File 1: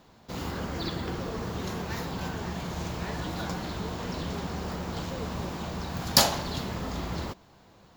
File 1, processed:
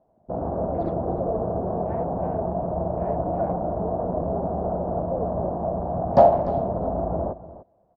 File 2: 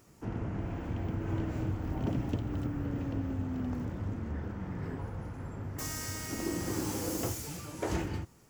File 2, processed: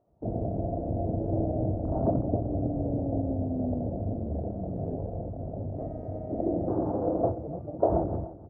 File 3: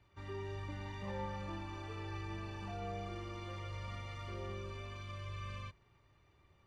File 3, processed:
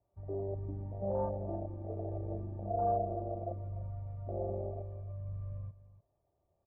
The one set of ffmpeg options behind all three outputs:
-af "afwtdn=0.0112,lowpass=frequency=660:width_type=q:width=6.3,aecho=1:1:297:0.168,volume=3.5dB"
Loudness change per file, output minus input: +6.5, +5.5, +6.0 LU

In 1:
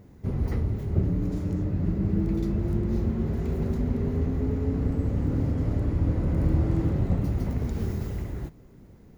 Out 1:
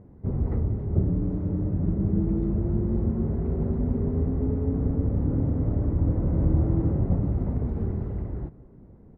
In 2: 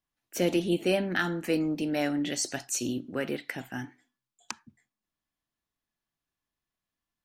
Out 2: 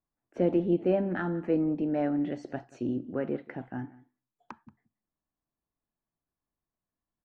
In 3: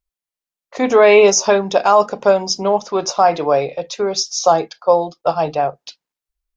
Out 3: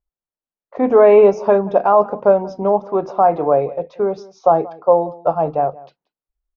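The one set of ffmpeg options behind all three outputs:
-filter_complex "[0:a]lowpass=1000,asplit=2[link_01][link_02];[link_02]adelay=180.8,volume=-21dB,highshelf=frequency=4000:gain=-4.07[link_03];[link_01][link_03]amix=inputs=2:normalize=0,volume=1dB"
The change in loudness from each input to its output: +1.0, 0.0, −0.5 LU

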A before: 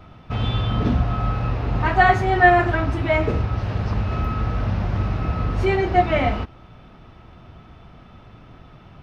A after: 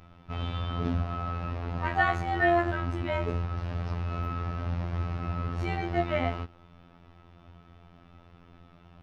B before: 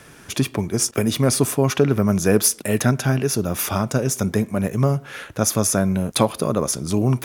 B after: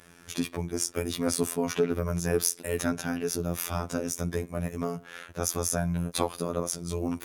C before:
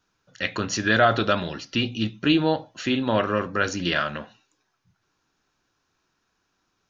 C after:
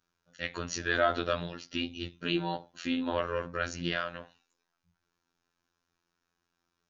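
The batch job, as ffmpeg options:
-af "afftfilt=real='hypot(re,im)*cos(PI*b)':imag='0':win_size=2048:overlap=0.75,volume=-5.5dB"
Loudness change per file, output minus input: −9.5, −9.5, −9.0 LU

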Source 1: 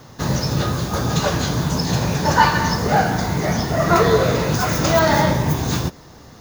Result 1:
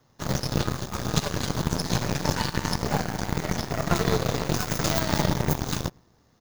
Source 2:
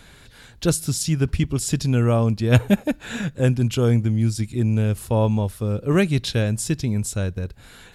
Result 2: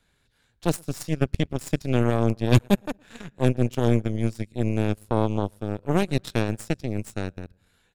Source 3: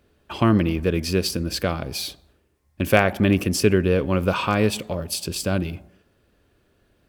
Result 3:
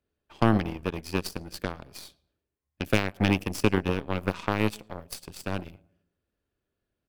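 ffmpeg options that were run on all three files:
-filter_complex "[0:a]asplit=2[link_01][link_02];[link_02]adelay=113,lowpass=frequency=1900:poles=1,volume=-18dB,asplit=2[link_03][link_04];[link_04]adelay=113,lowpass=frequency=1900:poles=1,volume=0.5,asplit=2[link_05][link_06];[link_06]adelay=113,lowpass=frequency=1900:poles=1,volume=0.5,asplit=2[link_07][link_08];[link_08]adelay=113,lowpass=frequency=1900:poles=1,volume=0.5[link_09];[link_01][link_03][link_05][link_07][link_09]amix=inputs=5:normalize=0,acrossover=split=350|3000[link_10][link_11][link_12];[link_11]acompressor=threshold=-24dB:ratio=6[link_13];[link_10][link_13][link_12]amix=inputs=3:normalize=0,aeval=exprs='0.668*(cos(1*acos(clip(val(0)/0.668,-1,1)))-cos(1*PI/2))+0.0596*(cos(4*acos(clip(val(0)/0.668,-1,1)))-cos(4*PI/2))+0.0841*(cos(7*acos(clip(val(0)/0.668,-1,1)))-cos(7*PI/2))+0.0119*(cos(8*acos(clip(val(0)/0.668,-1,1)))-cos(8*PI/2))':channel_layout=same,volume=-2dB"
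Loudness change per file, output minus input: −8.5, −4.0, −6.5 LU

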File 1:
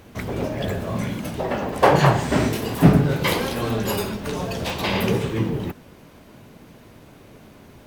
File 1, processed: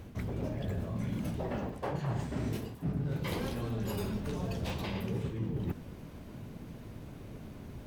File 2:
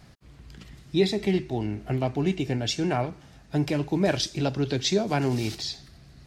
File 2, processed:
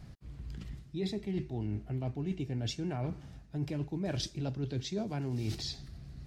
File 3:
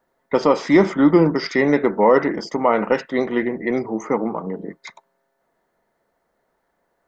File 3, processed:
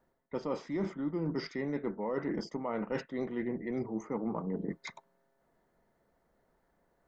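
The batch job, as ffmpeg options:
-af "lowshelf=frequency=260:gain=12,areverse,acompressor=threshold=-25dB:ratio=10,areverse,volume=-6.5dB"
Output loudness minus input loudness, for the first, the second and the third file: −15.0, −10.5, −17.5 LU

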